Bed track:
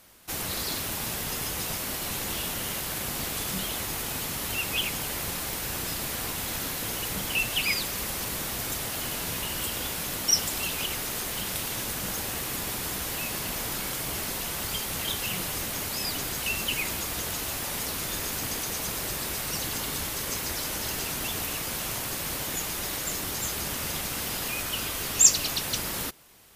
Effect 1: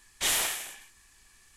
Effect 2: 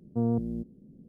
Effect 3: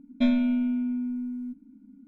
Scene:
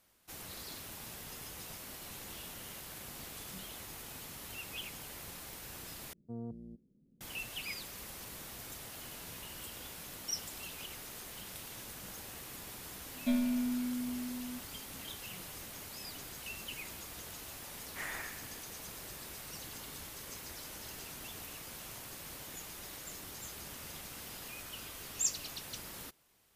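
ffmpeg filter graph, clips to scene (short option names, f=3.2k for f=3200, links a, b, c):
-filter_complex "[0:a]volume=-15dB[a];[1:a]highshelf=f=2.7k:t=q:w=3:g=-12[b];[a]asplit=2[c][d];[c]atrim=end=6.134[e];[2:a]atrim=end=1.08,asetpts=PTS-STARTPTS,volume=-16dB[f];[d]atrim=start=7.206[g];[3:a]atrim=end=2.07,asetpts=PTS-STARTPTS,volume=-8.5dB,afade=t=in:d=0.004:c=hsin,afade=t=out:st=2.066:d=0.004:c=hsin,adelay=13060[h];[b]atrim=end=1.56,asetpts=PTS-STARTPTS,volume=-13dB,afade=t=in:d=0.004:c=hsin,afade=t=out:st=1.556:d=0.004:c=hsin,adelay=17750[i];[e][f]acrossfade=d=0.004:c1=hsin:c2=hsin[j];[j][g]acrossfade=d=0.004:c1=hsin:c2=hsin[k];[k][h][i]amix=inputs=3:normalize=0"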